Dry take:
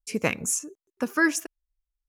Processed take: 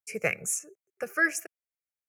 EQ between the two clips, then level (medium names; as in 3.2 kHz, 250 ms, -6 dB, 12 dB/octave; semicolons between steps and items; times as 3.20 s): high-pass 110 Hz 24 dB/octave; peaking EQ 2.3 kHz +6 dB 0.33 oct; static phaser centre 980 Hz, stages 6; -1.5 dB